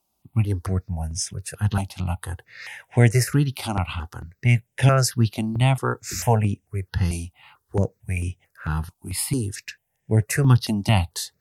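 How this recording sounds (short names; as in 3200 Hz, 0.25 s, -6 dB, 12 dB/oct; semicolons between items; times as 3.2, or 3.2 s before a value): notches that jump at a steady rate 4.5 Hz 470–4300 Hz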